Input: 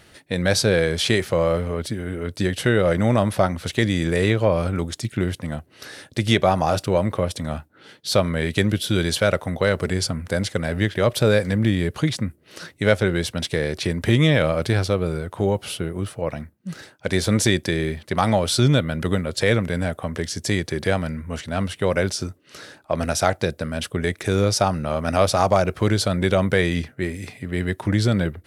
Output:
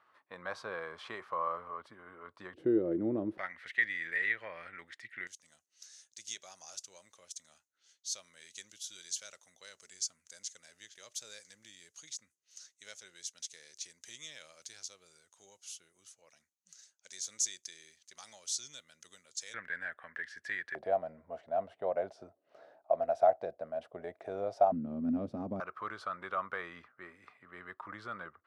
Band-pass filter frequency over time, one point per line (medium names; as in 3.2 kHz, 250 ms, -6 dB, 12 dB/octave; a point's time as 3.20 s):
band-pass filter, Q 7.8
1.1 kHz
from 2.54 s 330 Hz
from 3.38 s 1.9 kHz
from 5.27 s 6.5 kHz
from 19.54 s 1.7 kHz
from 20.75 s 680 Hz
from 24.72 s 250 Hz
from 25.60 s 1.2 kHz